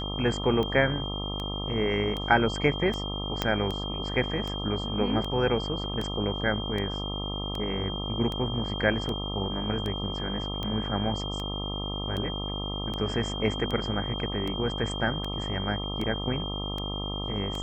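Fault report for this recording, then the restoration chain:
buzz 50 Hz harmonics 26 -34 dBFS
tick 78 rpm -20 dBFS
whine 3.2 kHz -35 dBFS
3.42 s: pop -11 dBFS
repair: de-click; band-stop 3.2 kHz, Q 30; de-hum 50 Hz, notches 26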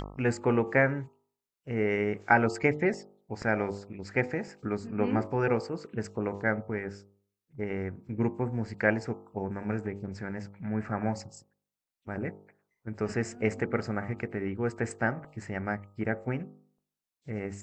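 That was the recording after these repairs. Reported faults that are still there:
3.42 s: pop

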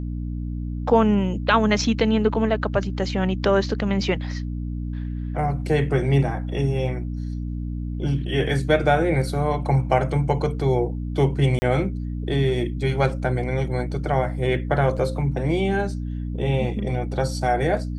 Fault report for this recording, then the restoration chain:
hum 60 Hz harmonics 5 -28 dBFS
11.59–11.62 s: dropout 30 ms
14.97 s: dropout 4.2 ms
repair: de-hum 60 Hz, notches 5; interpolate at 11.59 s, 30 ms; interpolate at 14.97 s, 4.2 ms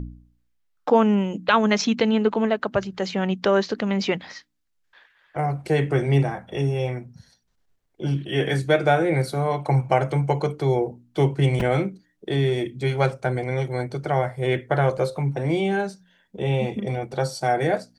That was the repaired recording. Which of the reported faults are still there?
nothing left

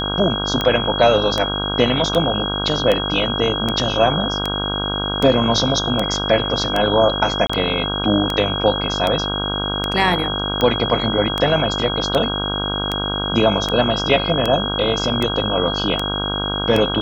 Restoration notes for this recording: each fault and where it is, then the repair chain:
buzz 50 Hz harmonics 32 -25 dBFS
tick 78 rpm -6 dBFS
whine 3.3 kHz -23 dBFS
7.47–7.50 s: dropout 25 ms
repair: de-click; de-hum 50 Hz, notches 32; band-stop 3.3 kHz, Q 30; interpolate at 7.47 s, 25 ms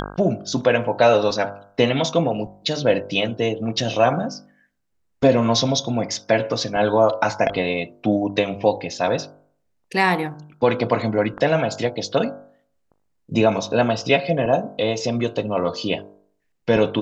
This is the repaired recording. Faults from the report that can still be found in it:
nothing left

